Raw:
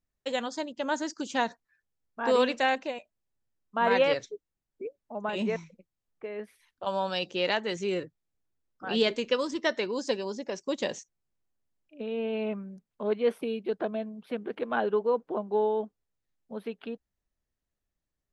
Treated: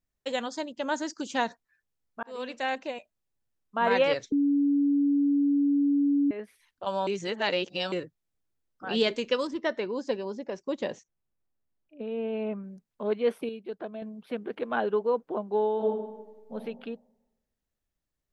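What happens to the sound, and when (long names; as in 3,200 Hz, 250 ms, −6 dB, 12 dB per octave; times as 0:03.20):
0:02.23–0:02.96: fade in
0:04.32–0:06.31: beep over 284 Hz −20.5 dBFS
0:07.07–0:07.92: reverse
0:09.47–0:12.64: low-pass filter 1,700 Hz 6 dB per octave
0:13.49–0:14.02: clip gain −6.5 dB
0:15.76–0:16.53: thrown reverb, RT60 1.1 s, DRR −5.5 dB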